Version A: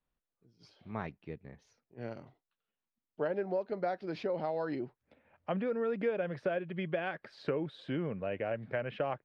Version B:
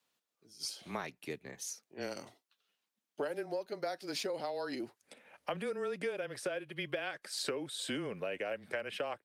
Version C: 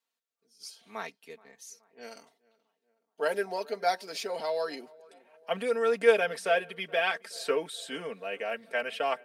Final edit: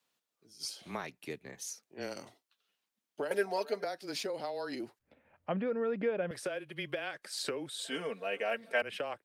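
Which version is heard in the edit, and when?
B
3.31–3.84 s: from C
4.99–6.31 s: from A
7.85–8.82 s: from C

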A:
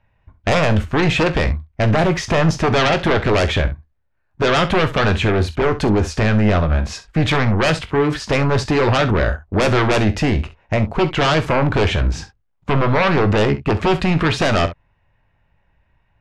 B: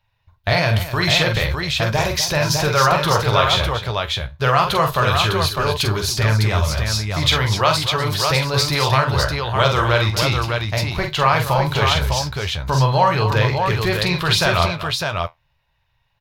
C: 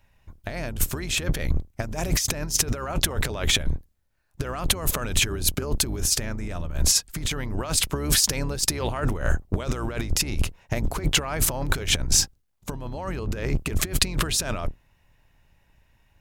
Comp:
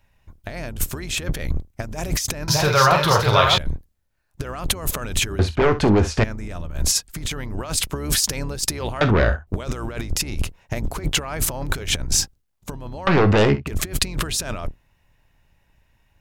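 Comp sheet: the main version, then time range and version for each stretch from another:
C
2.48–3.58 s: from B
5.39–6.24 s: from A
9.01–9.47 s: from A
13.07–13.67 s: from A

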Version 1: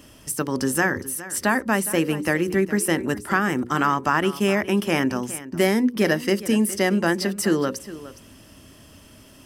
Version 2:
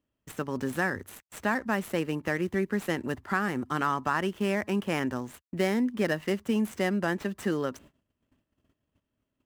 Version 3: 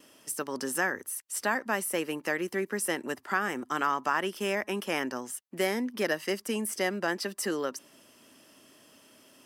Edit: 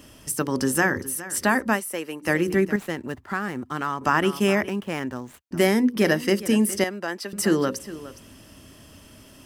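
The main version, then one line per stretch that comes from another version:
1
1.77–2.26 s: from 3, crossfade 0.10 s
2.76–4.01 s: from 2
4.69–5.51 s: from 2
6.84–7.33 s: from 3

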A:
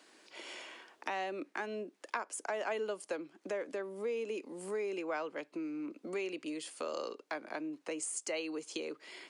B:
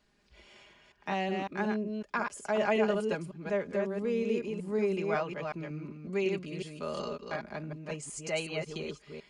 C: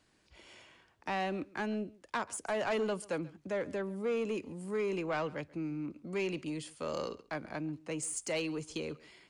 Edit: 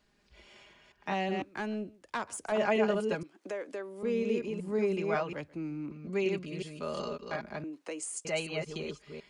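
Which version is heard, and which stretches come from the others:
B
1.42–2.52 s: from C
3.23–4.03 s: from A
5.33–5.91 s: from C
7.64–8.25 s: from A

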